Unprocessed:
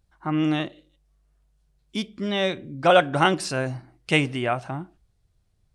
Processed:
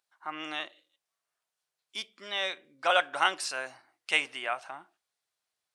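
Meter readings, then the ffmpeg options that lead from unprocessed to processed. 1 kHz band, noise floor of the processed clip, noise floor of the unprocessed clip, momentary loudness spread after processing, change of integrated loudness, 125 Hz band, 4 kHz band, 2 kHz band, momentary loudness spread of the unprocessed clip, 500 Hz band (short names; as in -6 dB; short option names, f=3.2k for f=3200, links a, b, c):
-6.5 dB, under -85 dBFS, -68 dBFS, 17 LU, -7.0 dB, under -30 dB, -3.0 dB, -3.5 dB, 16 LU, -12.5 dB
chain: -af "highpass=920,volume=-3dB"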